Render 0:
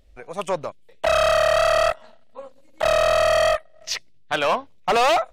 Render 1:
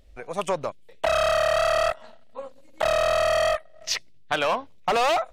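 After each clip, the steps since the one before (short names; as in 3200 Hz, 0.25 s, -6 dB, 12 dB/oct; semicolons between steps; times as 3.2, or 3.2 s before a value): compressor, threshold -22 dBFS, peak gain reduction 5.5 dB; gain +1.5 dB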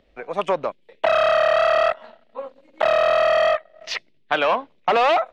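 three-band isolator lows -16 dB, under 180 Hz, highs -22 dB, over 4000 Hz; gain +4.5 dB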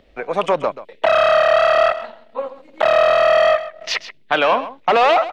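in parallel at +2 dB: limiter -18.5 dBFS, peak gain reduction 11 dB; on the sum: echo 0.132 s -14 dB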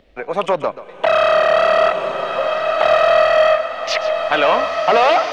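bloom reverb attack 1.59 s, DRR 3.5 dB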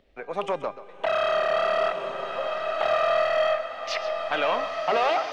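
resonator 400 Hz, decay 0.72 s, mix 70%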